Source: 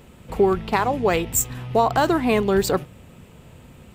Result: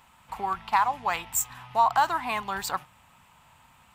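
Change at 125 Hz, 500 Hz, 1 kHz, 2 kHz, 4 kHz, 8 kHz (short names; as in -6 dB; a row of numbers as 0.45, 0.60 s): -18.5, -17.0, -0.5, -3.5, -5.0, -5.5 dB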